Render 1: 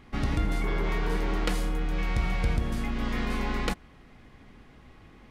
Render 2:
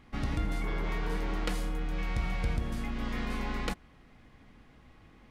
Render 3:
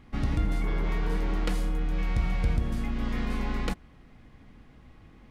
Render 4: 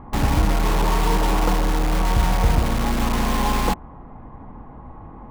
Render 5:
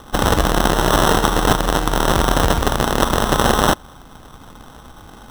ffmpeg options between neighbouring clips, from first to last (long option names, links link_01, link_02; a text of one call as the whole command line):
ffmpeg -i in.wav -af "bandreject=frequency=390:width=12,volume=-4.5dB" out.wav
ffmpeg -i in.wav -af "lowshelf=frequency=370:gain=5.5" out.wav
ffmpeg -i in.wav -filter_complex "[0:a]lowpass=frequency=940:width_type=q:width=4.1,asplit=2[link_01][link_02];[link_02]aeval=exprs='(mod(29.9*val(0)+1,2)-1)/29.9':channel_layout=same,volume=-3dB[link_03];[link_01][link_03]amix=inputs=2:normalize=0,volume=7.5dB" out.wav
ffmpeg -i in.wav -filter_complex "[0:a]asplit=2[link_01][link_02];[link_02]acrusher=bits=3:mode=log:mix=0:aa=0.000001,volume=-4dB[link_03];[link_01][link_03]amix=inputs=2:normalize=0,crystalizer=i=8.5:c=0,acrusher=samples=19:mix=1:aa=0.000001,volume=-7dB" out.wav